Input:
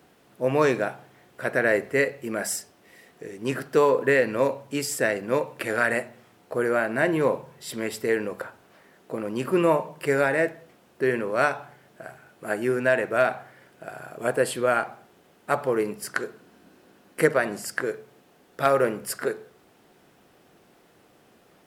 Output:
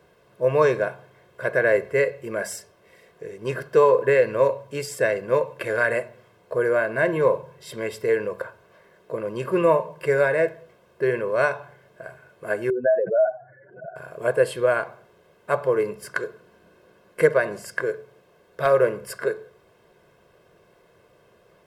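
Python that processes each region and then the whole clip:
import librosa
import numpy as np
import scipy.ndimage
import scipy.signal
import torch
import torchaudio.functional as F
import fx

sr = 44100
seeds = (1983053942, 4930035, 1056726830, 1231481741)

y = fx.chain(x, sr, fx.spec_expand(power=3.0),
    fx.pre_swell(db_per_s=100.0), at=(12.7, 13.96))
y = fx.high_shelf(y, sr, hz=3500.0, db=-9.0)
y = y + 0.73 * np.pad(y, (int(1.9 * sr / 1000.0), 0))[:len(y)]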